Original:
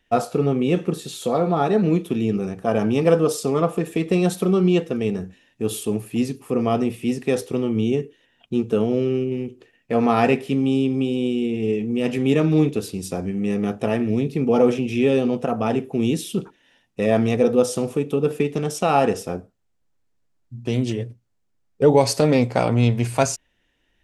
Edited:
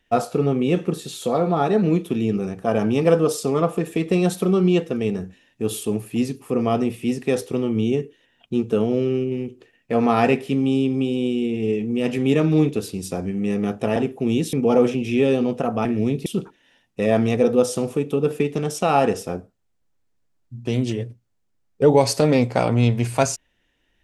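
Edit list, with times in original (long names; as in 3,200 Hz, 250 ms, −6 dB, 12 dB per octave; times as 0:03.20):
0:13.96–0:14.37: swap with 0:15.69–0:16.26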